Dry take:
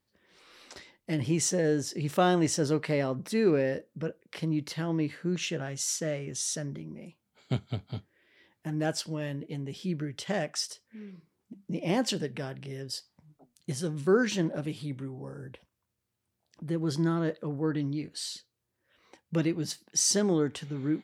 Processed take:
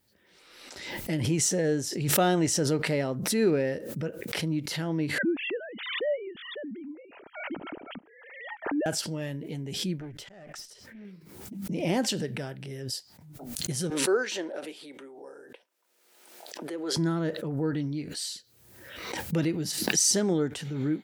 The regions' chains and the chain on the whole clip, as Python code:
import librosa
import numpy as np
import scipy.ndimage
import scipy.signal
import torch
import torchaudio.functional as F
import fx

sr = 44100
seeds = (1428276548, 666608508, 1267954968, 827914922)

y = fx.chain(x, sr, fx.sine_speech(),
    fx.air_absorb(metres=480.0), at=(5.18, 8.86))
y = fx.chain(y, sr, fx.high_shelf(hz=5600.0, db=-10.0),
    fx.auto_swell(attack_ms=667.0),
    fx.tube_stage(drive_db=36.0, bias=0.4), at=(9.98, 11.05))
y = fx.chain(y, sr, fx.highpass(hz=370.0, slope=24),
    fx.high_shelf(hz=8900.0, db=-10.0), at=(13.9, 16.97))
y = fx.high_shelf(y, sr, hz=9800.0, db=9.0)
y = fx.notch(y, sr, hz=1100.0, q=8.4)
y = fx.pre_swell(y, sr, db_per_s=46.0)